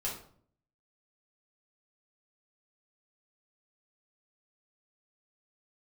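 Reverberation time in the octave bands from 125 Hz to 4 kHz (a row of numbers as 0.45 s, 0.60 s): 0.80 s, 0.75 s, 0.60 s, 0.50 s, 0.40 s, 0.35 s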